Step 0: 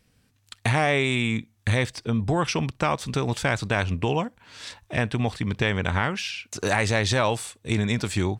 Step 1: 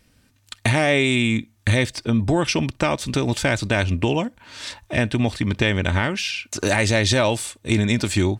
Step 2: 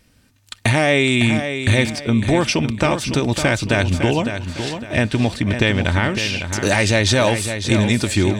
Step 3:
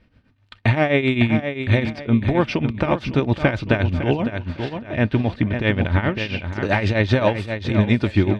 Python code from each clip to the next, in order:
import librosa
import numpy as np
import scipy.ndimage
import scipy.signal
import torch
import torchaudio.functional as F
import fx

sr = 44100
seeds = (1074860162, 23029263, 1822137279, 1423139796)

y1 = x + 0.34 * np.pad(x, (int(3.3 * sr / 1000.0), 0))[:len(x)]
y1 = fx.dynamic_eq(y1, sr, hz=1100.0, q=1.1, threshold_db=-38.0, ratio=4.0, max_db=-7)
y1 = y1 * 10.0 ** (5.5 / 20.0)
y2 = fx.echo_feedback(y1, sr, ms=556, feedback_pct=34, wet_db=-8.5)
y2 = y2 * 10.0 ** (2.5 / 20.0)
y3 = fx.tremolo_shape(y2, sr, shape='triangle', hz=7.6, depth_pct=80)
y3 = fx.air_absorb(y3, sr, metres=340.0)
y3 = y3 * 10.0 ** (3.0 / 20.0)